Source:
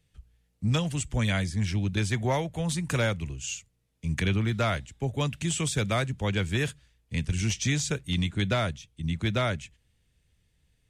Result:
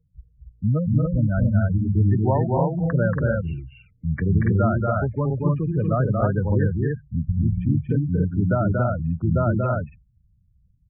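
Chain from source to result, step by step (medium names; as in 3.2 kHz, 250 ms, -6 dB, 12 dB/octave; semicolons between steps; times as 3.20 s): low-pass 1.7 kHz 24 dB/octave; spectral gate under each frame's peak -15 dB strong; vibrato 2.8 Hz 12 cents; loudspeakers at several distances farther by 80 m -3 dB, 97 m -2 dB; trim +5 dB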